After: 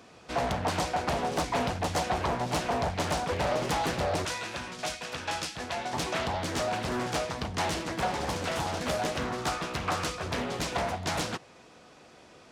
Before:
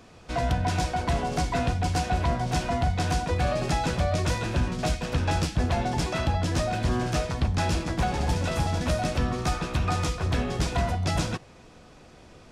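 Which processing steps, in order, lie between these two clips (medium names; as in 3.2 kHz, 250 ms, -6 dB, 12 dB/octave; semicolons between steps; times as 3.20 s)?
high-pass 240 Hz 6 dB/octave, from 4.25 s 1.1 kHz, from 5.93 s 350 Hz; loudspeaker Doppler distortion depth 0.8 ms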